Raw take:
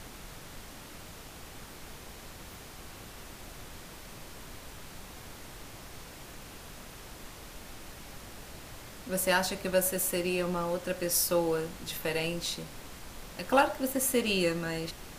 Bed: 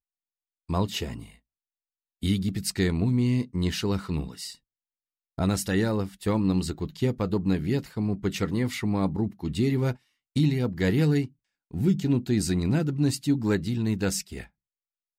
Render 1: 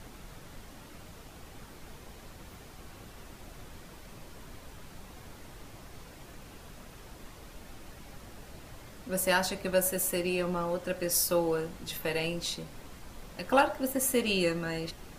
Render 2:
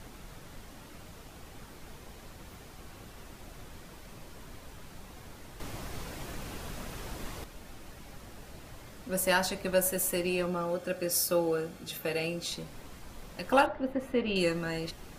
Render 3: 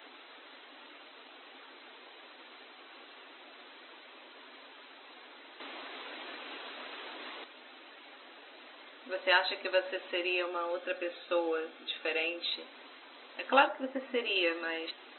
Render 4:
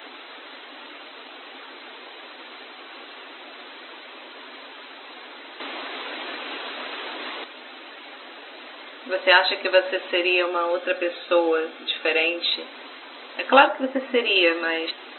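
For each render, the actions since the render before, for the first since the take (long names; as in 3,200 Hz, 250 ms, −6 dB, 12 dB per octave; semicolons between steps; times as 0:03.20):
broadband denoise 6 dB, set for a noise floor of −48 dBFS
0:05.60–0:07.44: clip gain +8 dB; 0:10.46–0:12.52: notch comb filter 970 Hz; 0:13.66–0:14.36: high-frequency loss of the air 350 metres
brick-wall band-pass 240–4,100 Hz; spectral tilt +3 dB per octave
level +11.5 dB; brickwall limiter −2 dBFS, peak gain reduction 2 dB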